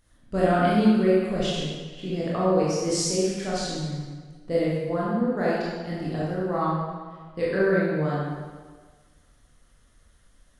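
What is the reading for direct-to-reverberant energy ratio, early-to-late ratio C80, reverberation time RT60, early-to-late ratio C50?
−7.5 dB, 0.5 dB, 1.6 s, −2.5 dB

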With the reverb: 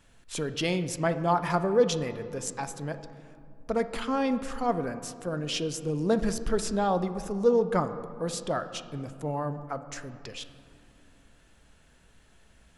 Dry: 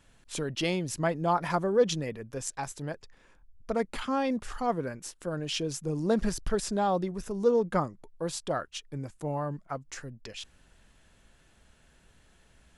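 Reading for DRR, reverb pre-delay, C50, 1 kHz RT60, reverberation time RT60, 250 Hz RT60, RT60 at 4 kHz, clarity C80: 10.0 dB, 4 ms, 12.0 dB, 2.4 s, 2.6 s, 3.7 s, 1.2 s, 13.0 dB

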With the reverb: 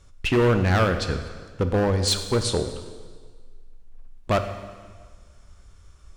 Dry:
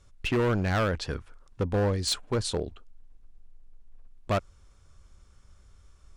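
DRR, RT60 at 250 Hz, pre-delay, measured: 7.0 dB, 1.5 s, 7 ms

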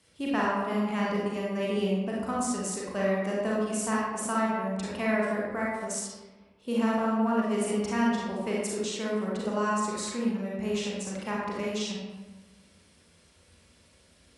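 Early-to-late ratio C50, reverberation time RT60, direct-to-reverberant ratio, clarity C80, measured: −1.5 dB, 1.2 s, −5.0 dB, 1.5 dB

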